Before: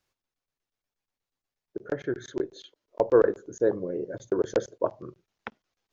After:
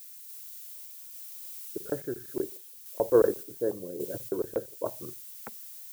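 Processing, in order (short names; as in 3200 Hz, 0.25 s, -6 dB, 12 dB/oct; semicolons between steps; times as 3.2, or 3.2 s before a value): Bessel low-pass 1100 Hz; added noise violet -42 dBFS; random-step tremolo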